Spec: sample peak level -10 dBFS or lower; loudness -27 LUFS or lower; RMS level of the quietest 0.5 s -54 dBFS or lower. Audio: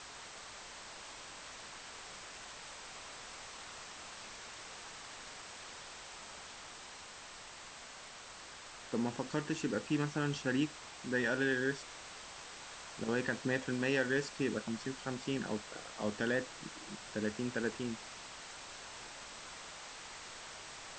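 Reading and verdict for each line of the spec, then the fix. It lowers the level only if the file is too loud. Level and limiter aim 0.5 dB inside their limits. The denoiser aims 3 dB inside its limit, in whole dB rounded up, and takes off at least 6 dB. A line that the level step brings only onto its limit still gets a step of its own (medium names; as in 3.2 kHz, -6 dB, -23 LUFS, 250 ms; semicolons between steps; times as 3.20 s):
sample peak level -19.5 dBFS: pass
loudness -40.0 LUFS: pass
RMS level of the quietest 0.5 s -51 dBFS: fail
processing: noise reduction 6 dB, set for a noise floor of -51 dBFS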